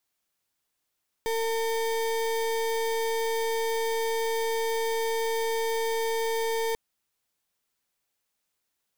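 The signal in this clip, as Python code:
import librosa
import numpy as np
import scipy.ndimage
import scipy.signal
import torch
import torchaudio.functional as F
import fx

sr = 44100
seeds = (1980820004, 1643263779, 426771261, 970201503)

y = fx.pulse(sr, length_s=5.49, hz=453.0, level_db=-27.5, duty_pct=33)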